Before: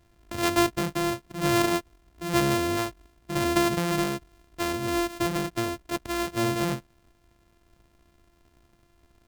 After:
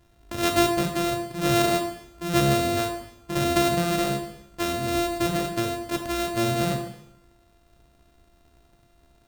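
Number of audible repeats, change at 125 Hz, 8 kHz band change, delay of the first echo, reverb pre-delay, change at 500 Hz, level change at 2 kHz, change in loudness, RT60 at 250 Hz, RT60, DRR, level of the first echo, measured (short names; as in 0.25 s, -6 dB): none, +3.5 dB, +2.0 dB, none, 7 ms, +3.0 dB, +0.5 dB, +2.0 dB, 0.90 s, 0.85 s, 4.0 dB, none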